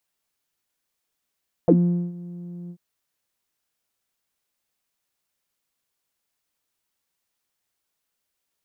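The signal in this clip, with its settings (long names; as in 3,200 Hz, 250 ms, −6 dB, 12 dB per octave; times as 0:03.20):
subtractive voice saw F3 12 dB per octave, low-pass 240 Hz, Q 12, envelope 1.5 octaves, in 0.05 s, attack 1.1 ms, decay 0.44 s, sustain −20 dB, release 0.07 s, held 1.02 s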